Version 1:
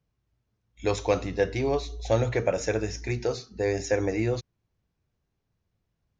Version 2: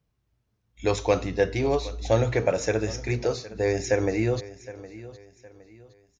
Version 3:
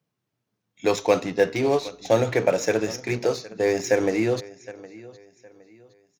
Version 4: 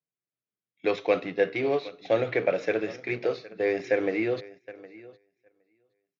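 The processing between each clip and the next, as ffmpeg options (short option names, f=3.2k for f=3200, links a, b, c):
-af "aecho=1:1:764|1528|2292:0.141|0.0494|0.0173,volume=2dB"
-filter_complex "[0:a]highpass=f=140:w=0.5412,highpass=f=140:w=1.3066,asplit=2[a][b];[b]acrusher=bits=4:mix=0:aa=0.5,volume=-8dB[c];[a][c]amix=inputs=2:normalize=0"
-af "agate=range=-14dB:threshold=-44dB:ratio=16:detection=peak,highpass=160,equalizer=f=230:t=q:w=4:g=-6,equalizer=f=920:t=q:w=4:g=-8,equalizer=f=2.2k:t=q:w=4:g=4,lowpass=f=3.8k:w=0.5412,lowpass=f=3.8k:w=1.3066,volume=-3.5dB"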